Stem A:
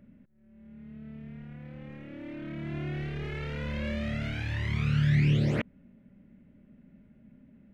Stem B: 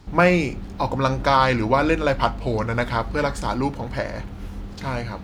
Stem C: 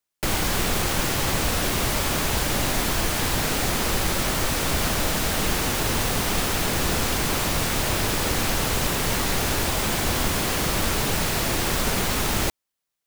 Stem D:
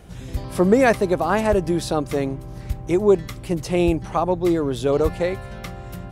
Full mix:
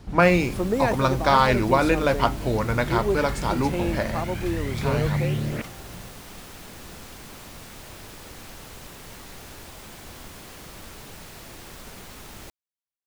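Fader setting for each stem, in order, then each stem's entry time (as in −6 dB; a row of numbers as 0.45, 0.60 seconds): −1.5, −1.0, −18.5, −9.0 decibels; 0.00, 0.00, 0.00, 0.00 seconds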